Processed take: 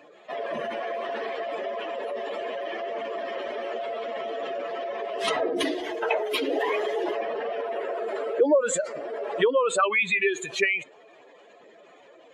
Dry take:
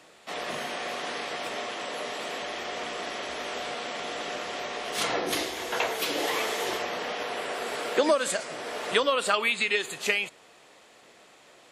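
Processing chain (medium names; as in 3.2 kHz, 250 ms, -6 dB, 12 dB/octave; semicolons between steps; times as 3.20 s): spectral contrast enhancement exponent 2.3; tape speed -5%; trim +3 dB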